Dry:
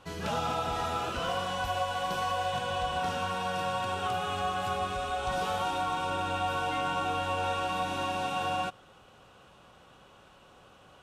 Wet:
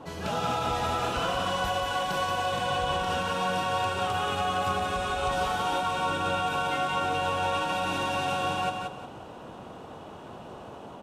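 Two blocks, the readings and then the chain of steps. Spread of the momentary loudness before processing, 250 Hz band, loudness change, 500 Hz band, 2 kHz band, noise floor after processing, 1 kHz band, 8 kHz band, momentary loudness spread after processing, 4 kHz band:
2 LU, +4.0 dB, +3.0 dB, +3.5 dB, +4.0 dB, -44 dBFS, +3.0 dB, +4.0 dB, 16 LU, +4.0 dB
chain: AGC gain up to 4 dB; limiter -20 dBFS, peak gain reduction 4.5 dB; band noise 75–940 Hz -45 dBFS; on a send: feedback echo 0.179 s, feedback 29%, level -5 dB

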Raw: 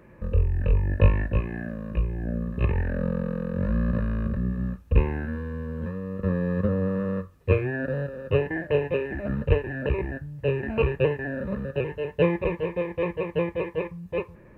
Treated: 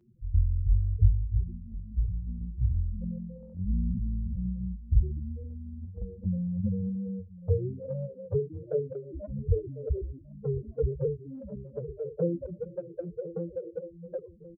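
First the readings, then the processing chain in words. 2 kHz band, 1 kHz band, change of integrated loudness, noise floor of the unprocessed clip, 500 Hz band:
under -35 dB, under -25 dB, -5.5 dB, -50 dBFS, -8.0 dB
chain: median filter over 25 samples; loudest bins only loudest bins 4; outdoor echo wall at 180 m, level -15 dB; envelope flanger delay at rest 9.1 ms, full sweep at -20.5 dBFS; gain -2 dB

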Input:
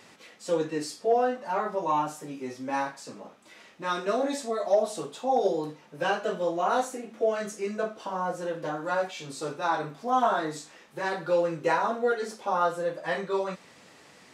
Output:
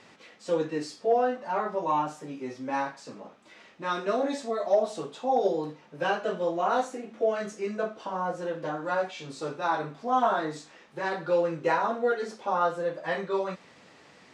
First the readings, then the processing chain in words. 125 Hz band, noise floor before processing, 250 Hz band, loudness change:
0.0 dB, -54 dBFS, 0.0 dB, -0.5 dB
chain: air absorption 71 m

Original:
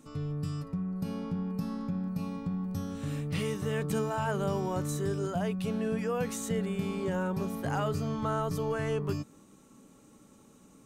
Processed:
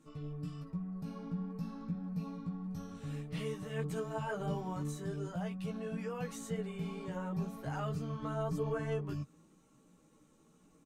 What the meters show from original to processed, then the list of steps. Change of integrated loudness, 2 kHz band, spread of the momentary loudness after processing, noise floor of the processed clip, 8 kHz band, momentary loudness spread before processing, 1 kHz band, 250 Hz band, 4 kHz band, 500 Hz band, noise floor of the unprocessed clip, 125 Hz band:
-7.0 dB, -7.5 dB, 6 LU, -66 dBFS, -10.0 dB, 4 LU, -7.5 dB, -7.0 dB, -8.5 dB, -7.5 dB, -58 dBFS, -5.5 dB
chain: high shelf 8400 Hz -6 dB; comb 6.4 ms, depth 38%; chorus voices 6, 0.96 Hz, delay 15 ms, depth 3 ms; gain -5 dB

